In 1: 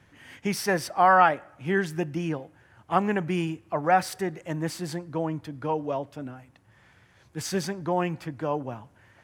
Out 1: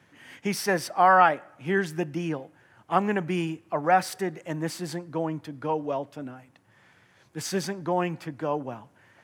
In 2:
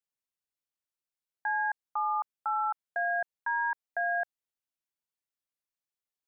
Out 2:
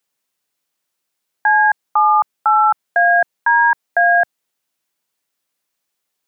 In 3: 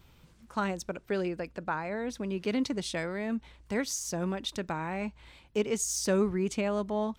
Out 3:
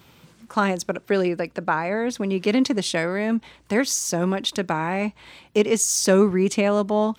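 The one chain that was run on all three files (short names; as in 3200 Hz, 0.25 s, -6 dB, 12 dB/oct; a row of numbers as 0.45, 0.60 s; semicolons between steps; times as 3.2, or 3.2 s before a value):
HPF 140 Hz 12 dB/oct; normalise peaks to -6 dBFS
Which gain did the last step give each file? +0.5, +17.0, +10.0 dB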